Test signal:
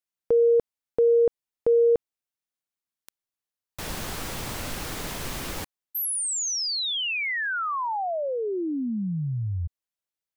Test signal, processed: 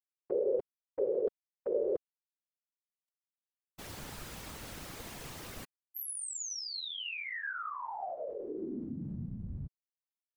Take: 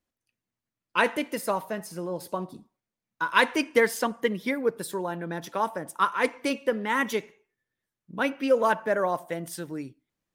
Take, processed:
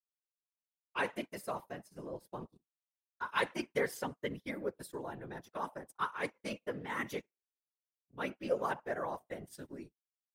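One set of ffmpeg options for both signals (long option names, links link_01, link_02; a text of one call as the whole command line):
ffmpeg -i in.wav -af "agate=range=-33dB:threshold=-38dB:ratio=3:release=36:detection=peak,afftfilt=real='hypot(re,im)*cos(2*PI*random(0))':imag='hypot(re,im)*sin(2*PI*random(1))':win_size=512:overlap=0.75,volume=-6dB" out.wav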